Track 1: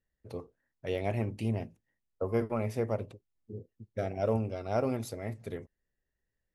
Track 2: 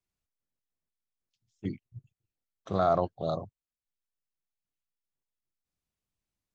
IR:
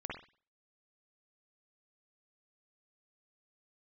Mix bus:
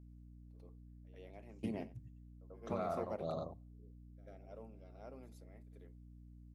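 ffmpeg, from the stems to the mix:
-filter_complex "[0:a]highpass=frequency=190:width=0.5412,highpass=frequency=190:width=1.3066,adelay=200,volume=-2dB,asplit=2[link_01][link_02];[link_02]volume=-21.5dB[link_03];[1:a]equalizer=frequency=3400:width_type=o:width=0.77:gain=-4,volume=-6dB,asplit=4[link_04][link_05][link_06][link_07];[link_05]volume=-15dB[link_08];[link_06]volume=-4dB[link_09];[link_07]apad=whole_len=297628[link_10];[link_01][link_10]sidechaingate=range=-36dB:threshold=-58dB:ratio=16:detection=peak[link_11];[2:a]atrim=start_sample=2205[link_12];[link_08][link_12]afir=irnorm=-1:irlink=0[link_13];[link_03][link_09]amix=inputs=2:normalize=0,aecho=0:1:91:1[link_14];[link_11][link_04][link_13][link_14]amix=inputs=4:normalize=0,aeval=exprs='val(0)+0.00178*(sin(2*PI*60*n/s)+sin(2*PI*2*60*n/s)/2+sin(2*PI*3*60*n/s)/3+sin(2*PI*4*60*n/s)/4+sin(2*PI*5*60*n/s)/5)':channel_layout=same,acompressor=threshold=-36dB:ratio=5"

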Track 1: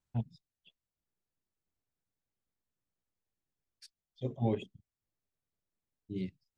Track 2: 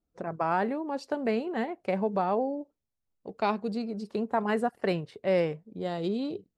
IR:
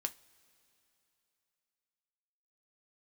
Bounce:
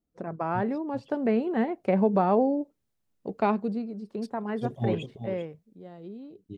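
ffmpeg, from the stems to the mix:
-filter_complex "[0:a]adynamicequalizer=threshold=0.00141:dfrequency=1900:dqfactor=0.7:tfrequency=1900:tqfactor=0.7:attack=5:release=100:ratio=0.375:range=2.5:mode=boostabove:tftype=highshelf,adelay=400,volume=-3dB,asplit=2[link_01][link_02];[link_02]volume=-10.5dB[link_03];[1:a]equalizer=frequency=220:width_type=o:width=2.1:gain=6,acrossover=split=3000[link_04][link_05];[link_05]acompressor=threshold=-59dB:ratio=4:attack=1:release=60[link_06];[link_04][link_06]amix=inputs=2:normalize=0,volume=-3.5dB,afade=type=out:start_time=3.32:duration=0.57:silence=0.316228,afade=type=out:start_time=5.21:duration=0.35:silence=0.398107[link_07];[link_03]aecho=0:1:390:1[link_08];[link_01][link_07][link_08]amix=inputs=3:normalize=0,dynaudnorm=framelen=320:gausssize=9:maxgain=6dB"

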